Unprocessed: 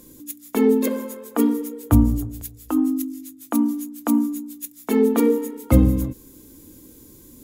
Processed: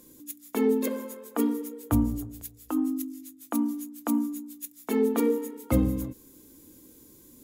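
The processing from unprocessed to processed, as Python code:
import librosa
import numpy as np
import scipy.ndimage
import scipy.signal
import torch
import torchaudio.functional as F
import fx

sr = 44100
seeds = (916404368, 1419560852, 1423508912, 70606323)

y = fx.low_shelf(x, sr, hz=140.0, db=-7.5)
y = F.gain(torch.from_numpy(y), -5.5).numpy()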